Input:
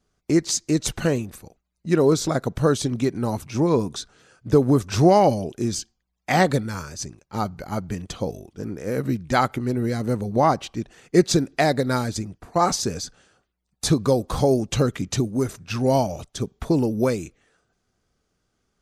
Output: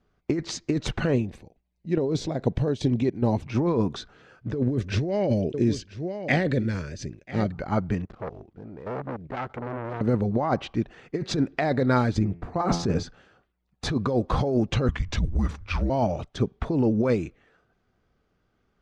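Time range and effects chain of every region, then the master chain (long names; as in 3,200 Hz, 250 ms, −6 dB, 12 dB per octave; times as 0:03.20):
0:01.14–0:03.46: parametric band 1,300 Hz −14.5 dB 0.61 octaves + square-wave tremolo 2.4 Hz, depth 60%, duty 70%
0:04.55–0:07.52: flat-topped bell 1,000 Hz −12.5 dB 1.1 octaves + single-tap delay 989 ms −18.5 dB
0:08.05–0:10.01: running median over 15 samples + output level in coarse steps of 14 dB + saturating transformer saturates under 1,300 Hz
0:12.13–0:13.03: low-shelf EQ 480 Hz +7 dB + hum removal 85.12 Hz, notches 32
0:14.88–0:15.90: mains-hum notches 60/120/180 Hz + frequency shifter −190 Hz
whole clip: low-pass filter 2,800 Hz 12 dB per octave; compressor whose output falls as the input rises −22 dBFS, ratio −1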